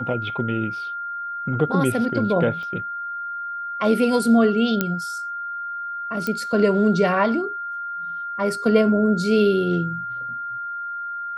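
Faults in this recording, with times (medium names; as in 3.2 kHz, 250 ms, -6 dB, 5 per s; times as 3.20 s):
whine 1.4 kHz -27 dBFS
2.63 s: pop -26 dBFS
4.81 s: pop -6 dBFS
6.27 s: pop -12 dBFS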